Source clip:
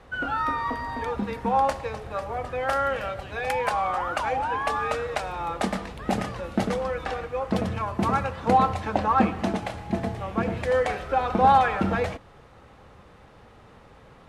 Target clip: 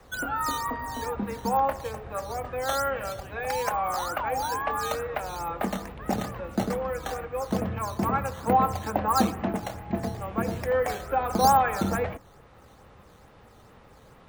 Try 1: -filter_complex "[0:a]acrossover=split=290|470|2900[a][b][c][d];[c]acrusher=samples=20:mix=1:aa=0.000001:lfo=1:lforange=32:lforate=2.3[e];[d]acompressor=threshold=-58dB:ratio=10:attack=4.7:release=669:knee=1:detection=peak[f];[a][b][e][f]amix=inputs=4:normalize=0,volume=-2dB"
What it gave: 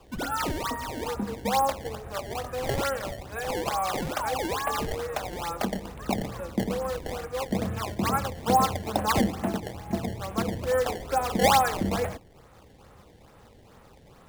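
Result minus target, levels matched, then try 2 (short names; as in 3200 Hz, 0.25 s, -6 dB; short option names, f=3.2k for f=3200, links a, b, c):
decimation with a swept rate: distortion +14 dB
-filter_complex "[0:a]acrossover=split=290|470|2900[a][b][c][d];[c]acrusher=samples=5:mix=1:aa=0.000001:lfo=1:lforange=8:lforate=2.3[e];[d]acompressor=threshold=-58dB:ratio=10:attack=4.7:release=669:knee=1:detection=peak[f];[a][b][e][f]amix=inputs=4:normalize=0,volume=-2dB"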